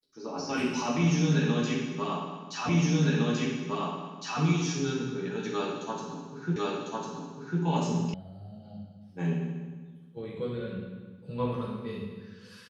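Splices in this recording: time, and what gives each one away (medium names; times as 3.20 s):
2.69 s: repeat of the last 1.71 s
6.56 s: repeat of the last 1.05 s
8.14 s: sound stops dead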